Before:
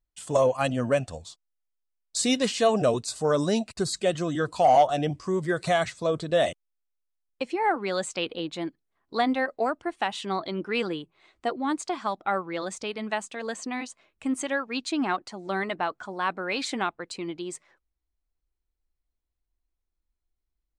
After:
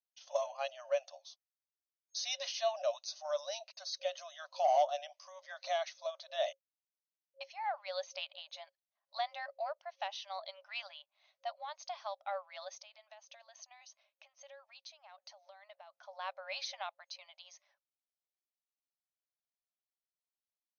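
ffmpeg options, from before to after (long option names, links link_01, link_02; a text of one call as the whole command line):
ffmpeg -i in.wav -filter_complex "[0:a]asettb=1/sr,asplit=3[link_01][link_02][link_03];[link_01]atrim=end=12.754[link_04];[link_02]atrim=start=12.75:end=16.08,asetpts=PTS-STARTPTS,afade=type=in:duration=0.004:curve=qsin,afade=type=out:start_time=3.326:duration=0.004:curve=qsin,acompressor=threshold=-38dB:ratio=16:attack=3.2:release=140:knee=1:detection=peak[link_05];[link_03]atrim=start=16.076[link_06];[link_04][link_05]acrossfade=duration=0.004:curve1=hsin:curve2=qsin[link_07];[link_07][link_06]acrossfade=duration=0.004:curve1=qsin:curve2=hsin,afftfilt=real='re*between(b*sr/4096,540,6500)':imag='im*between(b*sr/4096,540,6500)':win_size=4096:overlap=0.75,equalizer=frequency=1400:width_type=o:width=1.9:gain=-13,volume=-4dB" out.wav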